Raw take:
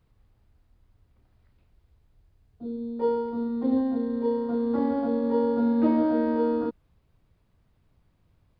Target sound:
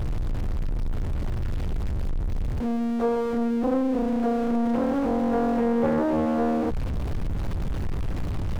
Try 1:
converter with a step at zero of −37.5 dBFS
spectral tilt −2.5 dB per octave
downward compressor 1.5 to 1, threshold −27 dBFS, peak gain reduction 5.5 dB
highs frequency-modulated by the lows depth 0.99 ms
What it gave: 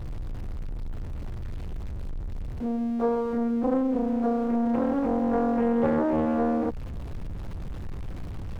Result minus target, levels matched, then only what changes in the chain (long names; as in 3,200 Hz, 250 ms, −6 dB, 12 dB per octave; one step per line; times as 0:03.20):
converter with a step at zero: distortion −9 dB
change: converter with a step at zero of −27.5 dBFS